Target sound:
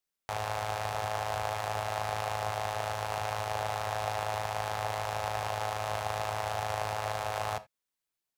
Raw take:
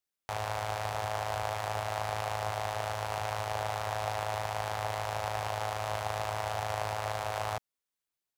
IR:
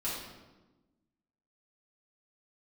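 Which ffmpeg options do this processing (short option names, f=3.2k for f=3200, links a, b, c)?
-filter_complex "[0:a]asplit=2[a][b];[1:a]atrim=start_sample=2205,atrim=end_sample=3969[c];[b][c]afir=irnorm=-1:irlink=0,volume=-16.5dB[d];[a][d]amix=inputs=2:normalize=0"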